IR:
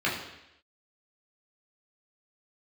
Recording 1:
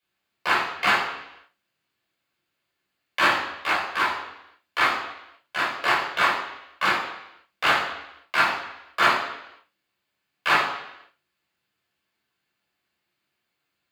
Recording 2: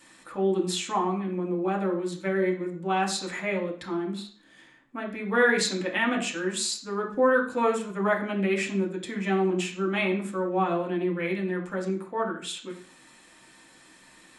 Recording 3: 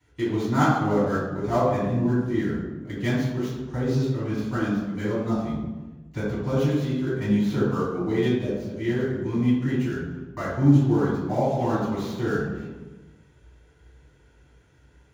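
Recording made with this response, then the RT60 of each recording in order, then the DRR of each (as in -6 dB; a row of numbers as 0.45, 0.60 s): 1; 0.85, 0.50, 1.2 s; -6.5, -1.0, -11.0 dB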